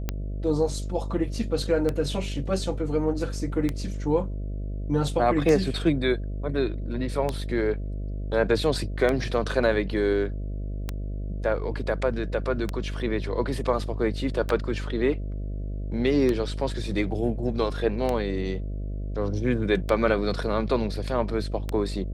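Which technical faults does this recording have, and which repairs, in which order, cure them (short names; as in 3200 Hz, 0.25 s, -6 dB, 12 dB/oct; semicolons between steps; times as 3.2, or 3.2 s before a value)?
buzz 50 Hz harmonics 13 -31 dBFS
tick 33 1/3 rpm -13 dBFS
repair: de-click; de-hum 50 Hz, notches 13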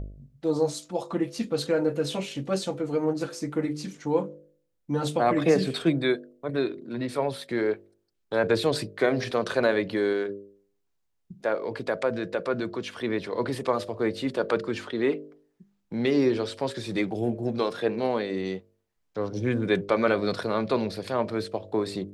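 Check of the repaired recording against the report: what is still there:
none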